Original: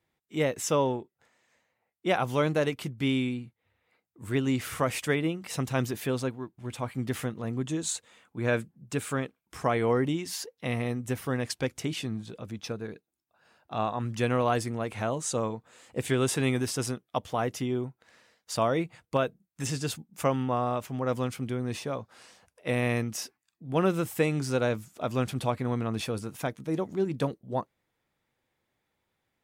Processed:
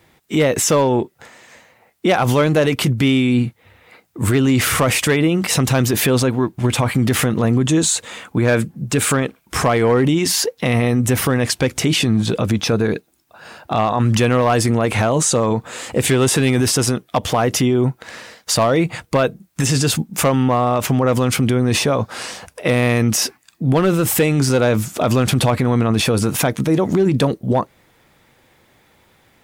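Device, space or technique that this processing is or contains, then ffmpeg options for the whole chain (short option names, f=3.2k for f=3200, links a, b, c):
loud club master: -af "acompressor=threshold=-33dB:ratio=1.5,asoftclip=type=hard:threshold=-23.5dB,alimiter=level_in=32dB:limit=-1dB:release=50:level=0:latency=1,volume=-7.5dB"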